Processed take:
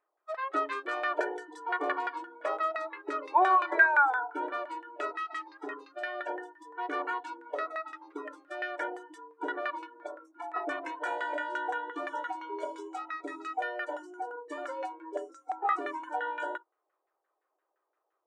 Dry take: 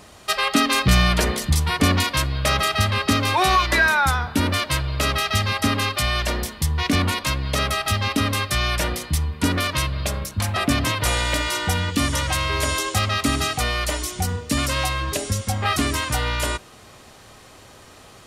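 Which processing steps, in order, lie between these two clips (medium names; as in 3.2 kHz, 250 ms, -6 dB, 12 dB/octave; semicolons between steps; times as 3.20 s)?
on a send at -22 dB: reverberation RT60 0.50 s, pre-delay 3 ms; on the sum: spectral noise reduction 28 dB; LFO low-pass saw down 5.8 Hz 690–1700 Hz; brick-wall FIR high-pass 300 Hz; peaking EQ 8 kHz +11.5 dB 0.48 oct; trim -8.5 dB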